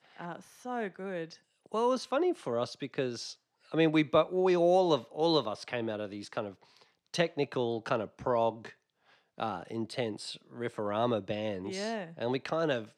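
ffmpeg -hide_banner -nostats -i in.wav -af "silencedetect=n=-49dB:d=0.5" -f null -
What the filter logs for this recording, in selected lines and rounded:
silence_start: 8.72
silence_end: 9.38 | silence_duration: 0.66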